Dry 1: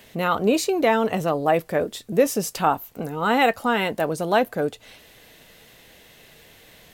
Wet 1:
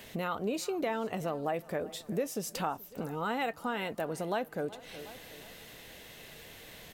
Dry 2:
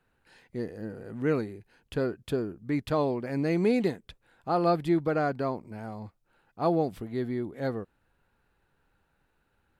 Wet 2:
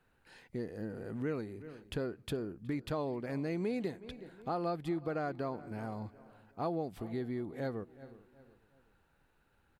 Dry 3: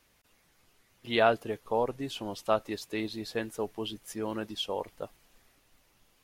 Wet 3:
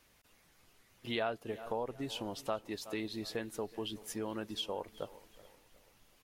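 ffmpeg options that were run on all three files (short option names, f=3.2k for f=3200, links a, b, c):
-filter_complex "[0:a]asplit=2[a][b];[b]adelay=368,lowpass=f=3.6k:p=1,volume=-23dB,asplit=2[c][d];[d]adelay=368,lowpass=f=3.6k:p=1,volume=0.38,asplit=2[e][f];[f]adelay=368,lowpass=f=3.6k:p=1,volume=0.38[g];[c][e][g]amix=inputs=3:normalize=0[h];[a][h]amix=inputs=2:normalize=0,acompressor=threshold=-37dB:ratio=2.5,asplit=2[i][j];[j]aecho=0:1:427|854:0.0668|0.0194[k];[i][k]amix=inputs=2:normalize=0"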